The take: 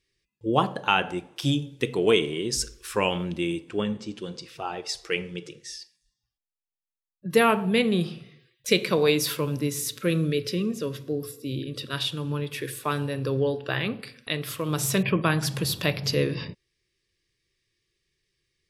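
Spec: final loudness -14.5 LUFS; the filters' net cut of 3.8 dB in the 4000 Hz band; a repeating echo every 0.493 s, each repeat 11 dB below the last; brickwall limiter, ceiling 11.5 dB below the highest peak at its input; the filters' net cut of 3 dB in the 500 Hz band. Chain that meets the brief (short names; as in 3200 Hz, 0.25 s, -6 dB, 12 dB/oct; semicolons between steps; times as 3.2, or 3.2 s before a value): bell 500 Hz -3.5 dB; bell 4000 Hz -5 dB; limiter -20 dBFS; feedback echo 0.493 s, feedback 28%, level -11 dB; gain +17 dB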